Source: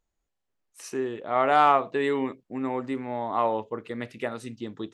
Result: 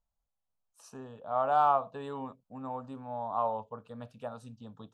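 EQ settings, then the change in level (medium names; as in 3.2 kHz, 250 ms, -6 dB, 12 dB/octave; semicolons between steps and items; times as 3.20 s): treble shelf 3 kHz -10 dB; static phaser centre 850 Hz, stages 4; -3.5 dB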